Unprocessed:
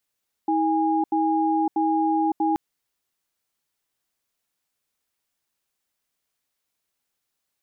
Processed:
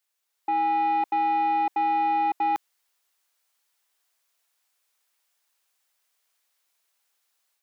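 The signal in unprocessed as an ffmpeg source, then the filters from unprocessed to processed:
-f lavfi -i "aevalsrc='0.0841*(sin(2*PI*320*t)+sin(2*PI*820*t))*clip(min(mod(t,0.64),0.56-mod(t,0.64))/0.005,0,1)':d=2.08:s=44100"
-af "highpass=630,dynaudnorm=f=290:g=3:m=6dB,asoftclip=type=tanh:threshold=-20dB"

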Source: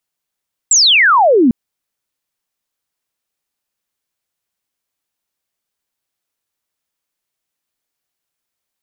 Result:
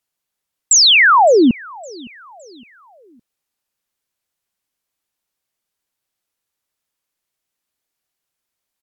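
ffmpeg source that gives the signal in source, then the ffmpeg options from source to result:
-f lavfi -i "aevalsrc='0.473*clip(t/0.002,0,1)*clip((0.8-t)/0.002,0,1)*sin(2*PI*7900*0.8/log(220/7900)*(exp(log(220/7900)*t/0.8)-1))':d=0.8:s=44100"
-af "aecho=1:1:562|1124|1686:0.0631|0.0278|0.0122" -ar 48000 -c:a libvorbis -b:a 192k

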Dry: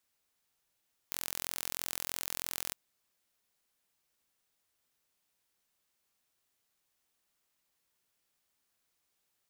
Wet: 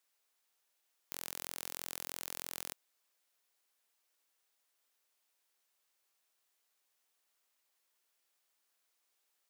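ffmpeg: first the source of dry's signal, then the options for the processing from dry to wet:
-f lavfi -i "aevalsrc='0.355*eq(mod(n,1023),0)':d=1.61:s=44100"
-af "highpass=400,asoftclip=type=tanh:threshold=-14.5dB"

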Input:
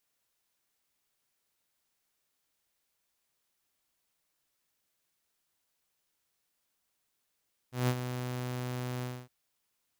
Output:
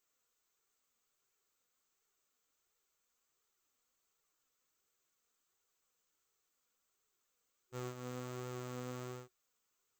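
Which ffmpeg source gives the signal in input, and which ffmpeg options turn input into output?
-f lavfi -i "aevalsrc='0.0794*(2*mod(125*t,1)-1)':d=1.562:s=44100,afade=t=in:d=0.163,afade=t=out:st=0.163:d=0.06:silence=0.335,afade=t=out:st=1.31:d=0.252"
-af "superequalizer=7b=2:10b=2:15b=2:16b=0.282,acompressor=threshold=-36dB:ratio=12,flanger=delay=2.1:depth=2.2:regen=53:speed=1.4:shape=triangular"

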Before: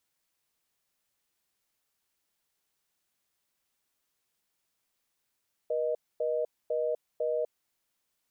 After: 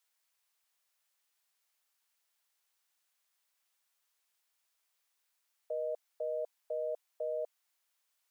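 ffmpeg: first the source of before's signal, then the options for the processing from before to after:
-f lavfi -i "aevalsrc='0.0335*(sin(2*PI*480*t)+sin(2*PI*620*t))*clip(min(mod(t,0.5),0.25-mod(t,0.5))/0.005,0,1)':d=1.92:s=44100"
-af "highpass=720"

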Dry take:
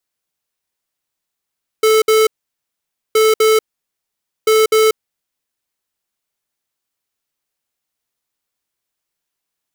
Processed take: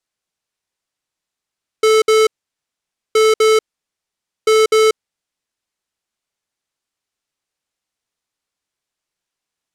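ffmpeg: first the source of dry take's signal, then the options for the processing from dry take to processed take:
-f lavfi -i "aevalsrc='0.282*(2*lt(mod(437*t,1),0.5)-1)*clip(min(mod(mod(t,1.32),0.25),0.19-mod(mod(t,1.32),0.25))/0.005,0,1)*lt(mod(t,1.32),0.5)':d=3.96:s=44100"
-af "lowpass=8.8k"

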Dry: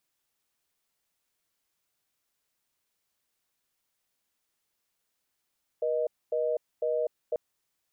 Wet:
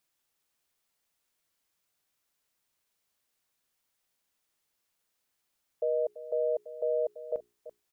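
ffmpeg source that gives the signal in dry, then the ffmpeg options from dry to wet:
-f lavfi -i "aevalsrc='0.0398*(sin(2*PI*480*t)+sin(2*PI*620*t))*clip(min(mod(t,0.5),0.25-mod(t,0.5))/0.005,0,1)':d=1.54:s=44100"
-af "bandreject=f=60:t=h:w=6,bandreject=f=120:t=h:w=6,bandreject=f=180:t=h:w=6,bandreject=f=240:t=h:w=6,bandreject=f=300:t=h:w=6,bandreject=f=360:t=h:w=6,bandreject=f=420:t=h:w=6,aecho=1:1:336:0.188"

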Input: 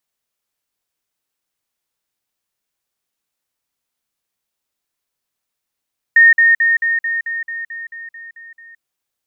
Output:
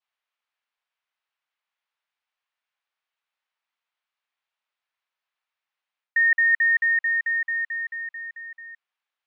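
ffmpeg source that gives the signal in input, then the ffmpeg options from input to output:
-f lavfi -i "aevalsrc='pow(10,(-4.5-3*floor(t/0.22))/20)*sin(2*PI*1840*t)*clip(min(mod(t,0.22),0.17-mod(t,0.22))/0.005,0,1)':d=2.64:s=44100"
-af "adynamicequalizer=threshold=0.0708:dfrequency=1700:dqfactor=2.2:tfrequency=1700:tqfactor=2.2:attack=5:release=100:ratio=0.375:range=2:mode=cutabove:tftype=bell,areverse,acompressor=threshold=-17dB:ratio=12,areverse,asuperpass=centerf=1600:order=4:qfactor=0.65"

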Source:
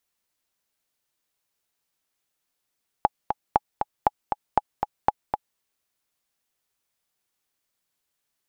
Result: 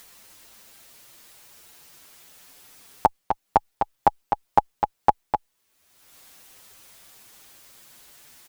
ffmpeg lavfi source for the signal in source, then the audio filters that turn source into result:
-f lavfi -i "aevalsrc='pow(10,(-4-6*gte(mod(t,2*60/236),60/236))/20)*sin(2*PI*838*mod(t,60/236))*exp(-6.91*mod(t,60/236)/0.03)':d=2.54:s=44100"
-filter_complex "[0:a]asplit=2[a][b];[b]acompressor=mode=upward:threshold=-28dB:ratio=2.5,volume=3dB[c];[a][c]amix=inputs=2:normalize=0,asplit=2[d][e];[e]adelay=7.3,afreqshift=0.3[f];[d][f]amix=inputs=2:normalize=1"

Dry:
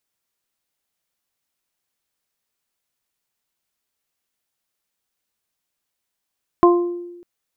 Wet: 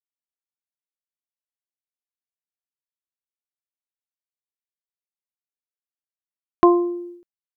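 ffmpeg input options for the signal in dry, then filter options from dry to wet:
-f lavfi -i "aevalsrc='0.398*pow(10,-3*t/1.08)*sin(2*PI*349*t)+0.168*pow(10,-3*t/0.47)*sin(2*PI*698*t)+0.282*pow(10,-3*t/0.44)*sin(2*PI*1047*t)':d=0.6:s=44100"
-af "agate=range=-33dB:threshold=-36dB:ratio=3:detection=peak"

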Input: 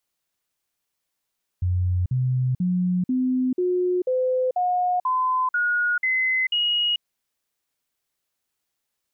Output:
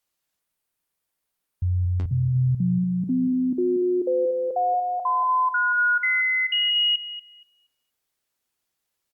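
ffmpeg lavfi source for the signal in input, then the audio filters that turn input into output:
-f lavfi -i "aevalsrc='0.112*clip(min(mod(t,0.49),0.44-mod(t,0.49))/0.005,0,1)*sin(2*PI*90.3*pow(2,floor(t/0.49)/2)*mod(t,0.49))':d=5.39:s=44100"
-filter_complex "[0:a]asplit=2[a][b];[b]adelay=236,lowpass=f=1.7k:p=1,volume=-8dB,asplit=2[c][d];[d]adelay=236,lowpass=f=1.7k:p=1,volume=0.34,asplit=2[e][f];[f]adelay=236,lowpass=f=1.7k:p=1,volume=0.34,asplit=2[g][h];[h]adelay=236,lowpass=f=1.7k:p=1,volume=0.34[i];[c][e][g][i]amix=inputs=4:normalize=0[j];[a][j]amix=inputs=2:normalize=0" -ar 48000 -c:a libopus -b:a 48k

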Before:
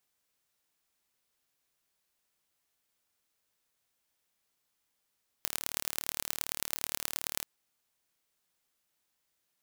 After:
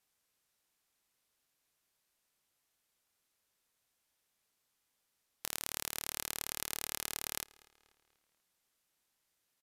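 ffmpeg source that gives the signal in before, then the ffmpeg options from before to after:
-f lavfi -i "aevalsrc='0.708*eq(mod(n,1179),0)*(0.5+0.5*eq(mod(n,4716),0))':d=1.99:s=44100"
-filter_complex "[0:a]alimiter=limit=-6.5dB:level=0:latency=1,asplit=2[a][b];[b]adelay=243,lowpass=f=4.7k:p=1,volume=-21.5dB,asplit=2[c][d];[d]adelay=243,lowpass=f=4.7k:p=1,volume=0.52,asplit=2[e][f];[f]adelay=243,lowpass=f=4.7k:p=1,volume=0.52,asplit=2[g][h];[h]adelay=243,lowpass=f=4.7k:p=1,volume=0.52[i];[a][c][e][g][i]amix=inputs=5:normalize=0,aresample=32000,aresample=44100"

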